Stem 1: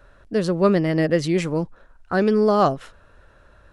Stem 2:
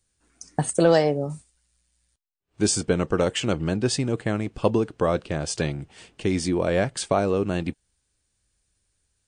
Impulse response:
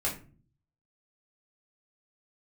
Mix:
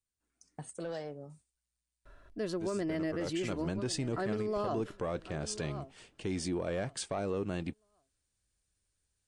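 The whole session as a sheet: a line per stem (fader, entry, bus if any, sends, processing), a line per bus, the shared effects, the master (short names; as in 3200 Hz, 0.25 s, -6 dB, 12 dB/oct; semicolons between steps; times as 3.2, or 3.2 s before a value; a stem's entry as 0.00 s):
-6.0 dB, 2.05 s, no send, echo send -23 dB, gate with hold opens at -47 dBFS; comb 3 ms, depth 46%; auto duck -7 dB, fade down 0.55 s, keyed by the second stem
2.93 s -19.5 dB -> 3.71 s -8.5 dB, 0.00 s, no send, no echo send, soft clip -12 dBFS, distortion -17 dB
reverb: off
echo: feedback echo 1.095 s, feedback 19%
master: limiter -26 dBFS, peak gain reduction 10 dB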